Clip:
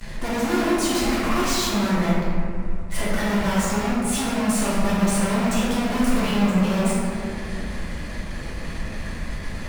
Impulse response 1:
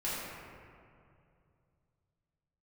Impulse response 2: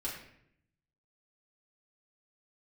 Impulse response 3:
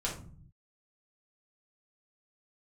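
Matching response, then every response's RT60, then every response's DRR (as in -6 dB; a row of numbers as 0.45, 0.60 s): 1; 2.5, 0.70, 0.45 s; -10.0, -6.5, -4.5 dB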